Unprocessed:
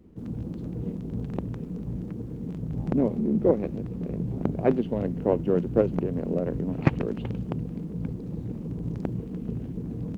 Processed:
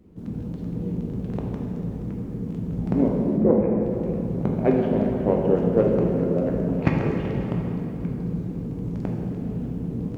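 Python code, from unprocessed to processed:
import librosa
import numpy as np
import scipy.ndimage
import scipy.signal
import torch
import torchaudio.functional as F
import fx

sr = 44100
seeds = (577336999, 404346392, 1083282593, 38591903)

y = fx.lowpass(x, sr, hz=2200.0, slope=24, at=(3.37, 3.81))
y = fx.rev_plate(y, sr, seeds[0], rt60_s=3.1, hf_ratio=0.7, predelay_ms=0, drr_db=-1.5)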